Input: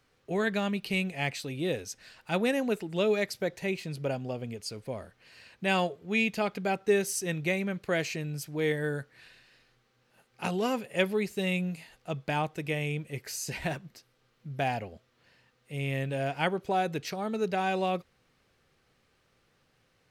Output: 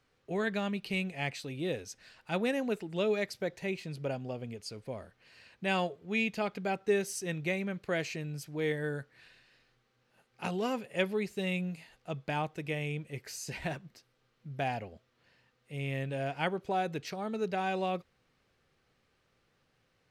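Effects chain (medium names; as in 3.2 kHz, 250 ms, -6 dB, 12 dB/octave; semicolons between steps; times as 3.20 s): treble shelf 10 kHz -8 dB; trim -3.5 dB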